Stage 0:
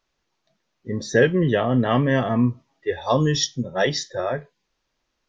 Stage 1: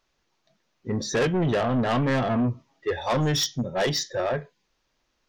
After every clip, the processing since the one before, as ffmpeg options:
-af "asoftclip=type=tanh:threshold=-21.5dB,volume=2dB"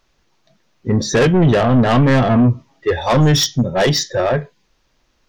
-af "lowshelf=f=200:g=6,volume=8.5dB"

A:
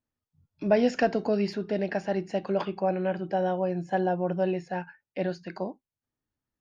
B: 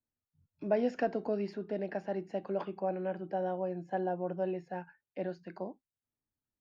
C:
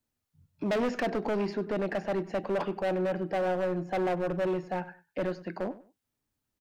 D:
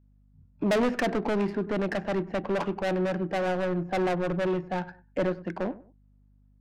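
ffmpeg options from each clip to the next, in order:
-filter_complex "[0:a]highshelf=f=2.3k:g=-11.5,acrossover=split=190|1100|2300[a][b][c][d];[a]acompressor=threshold=-46dB:ratio=6[e];[e][b][c][d]amix=inputs=4:normalize=0,volume=-6dB"
-filter_complex "[0:a]aeval=exprs='0.141*(cos(1*acos(clip(val(0)/0.141,-1,1)))-cos(1*PI/2))+0.0501*(cos(5*acos(clip(val(0)/0.141,-1,1)))-cos(5*PI/2))':c=same,volume=25.5dB,asoftclip=hard,volume=-25.5dB,asplit=2[a][b];[b]adelay=98,lowpass=f=3.2k:p=1,volume=-17dB,asplit=2[c][d];[d]adelay=98,lowpass=f=3.2k:p=1,volume=0.25[e];[a][c][e]amix=inputs=3:normalize=0"
-af "adynamicsmooth=sensitivity=7:basefreq=1.3k,adynamicequalizer=threshold=0.00708:dfrequency=560:dqfactor=0.98:tfrequency=560:tqfactor=0.98:attack=5:release=100:ratio=0.375:range=2.5:mode=cutabove:tftype=bell,aeval=exprs='val(0)+0.000631*(sin(2*PI*50*n/s)+sin(2*PI*2*50*n/s)/2+sin(2*PI*3*50*n/s)/3+sin(2*PI*4*50*n/s)/4+sin(2*PI*5*50*n/s)/5)':c=same,volume=5dB"

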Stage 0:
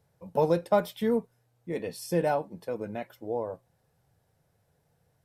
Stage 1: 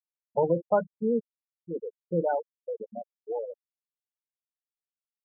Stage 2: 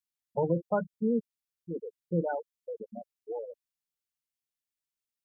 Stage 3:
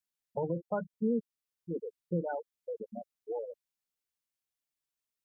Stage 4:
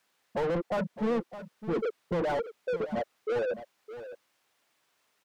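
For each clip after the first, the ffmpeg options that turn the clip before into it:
-af "bandreject=f=50:t=h:w=6,bandreject=f=100:t=h:w=6,bandreject=f=150:t=h:w=6,bandreject=f=200:t=h:w=6,bandreject=f=250:t=h:w=6,bandreject=f=300:t=h:w=6,bandreject=f=350:t=h:w=6,afftfilt=real='re*gte(hypot(re,im),0.112)':imag='im*gte(hypot(re,im),0.112)':win_size=1024:overlap=0.75"
-af "equalizer=f=690:t=o:w=2.2:g=-9.5,volume=3.5dB"
-af "alimiter=limit=-22.5dB:level=0:latency=1:release=390"
-filter_complex "[0:a]asplit=2[a][b];[b]highpass=f=720:p=1,volume=36dB,asoftclip=type=tanh:threshold=-22dB[c];[a][c]amix=inputs=2:normalize=0,lowpass=f=1.2k:p=1,volume=-6dB,aecho=1:1:612:0.224"

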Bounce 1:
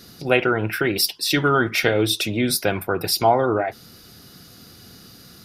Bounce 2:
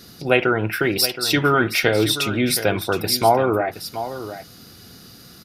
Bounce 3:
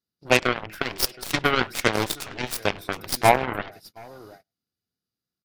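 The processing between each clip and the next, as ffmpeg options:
-af "aecho=1:1:721:0.251,volume=1dB"
-filter_complex "[0:a]asplit=2[a][b];[b]adelay=100,highpass=300,lowpass=3.4k,asoftclip=type=hard:threshold=-11.5dB,volume=-14dB[c];[a][c]amix=inputs=2:normalize=0,agate=range=-33dB:threshold=-31dB:ratio=16:detection=peak,aeval=exprs='0.891*(cos(1*acos(clip(val(0)/0.891,-1,1)))-cos(1*PI/2))+0.0708*(cos(4*acos(clip(val(0)/0.891,-1,1)))-cos(4*PI/2))+0.158*(cos(7*acos(clip(val(0)/0.891,-1,1)))-cos(7*PI/2))':c=same"

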